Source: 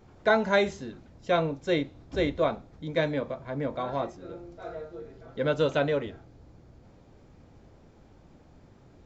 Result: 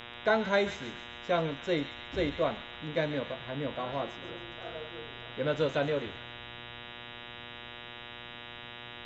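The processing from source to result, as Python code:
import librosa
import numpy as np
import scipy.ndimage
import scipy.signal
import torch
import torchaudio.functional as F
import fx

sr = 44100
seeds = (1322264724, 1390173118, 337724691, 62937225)

y = fx.dmg_buzz(x, sr, base_hz=120.0, harmonics=32, level_db=-42.0, tilt_db=0, odd_only=False)
y = fx.echo_wet_highpass(y, sr, ms=137, feedback_pct=52, hz=1800.0, wet_db=-8.5)
y = F.gain(torch.from_numpy(y), -4.0).numpy()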